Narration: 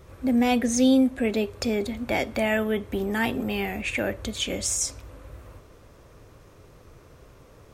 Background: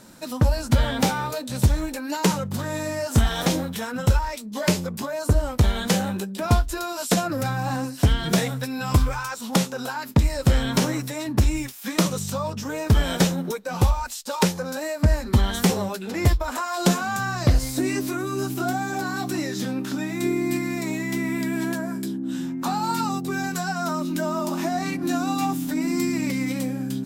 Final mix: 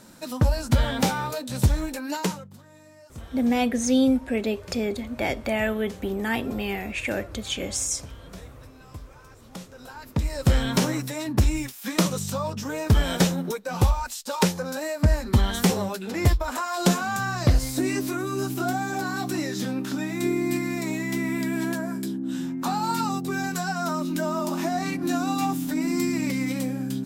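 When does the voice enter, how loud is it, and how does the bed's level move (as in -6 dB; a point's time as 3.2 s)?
3.10 s, -1.0 dB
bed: 2.16 s -1.5 dB
2.63 s -23 dB
9.37 s -23 dB
10.5 s -1 dB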